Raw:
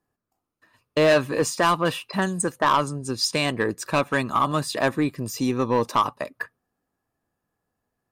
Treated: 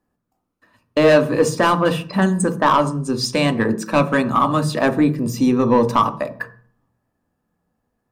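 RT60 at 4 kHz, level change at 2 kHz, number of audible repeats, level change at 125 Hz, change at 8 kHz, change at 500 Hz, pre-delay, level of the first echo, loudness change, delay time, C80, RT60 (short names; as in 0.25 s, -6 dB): 0.40 s, +3.0 dB, none, +7.5 dB, 0.0 dB, +6.0 dB, 3 ms, none, +5.5 dB, none, 19.5 dB, 0.45 s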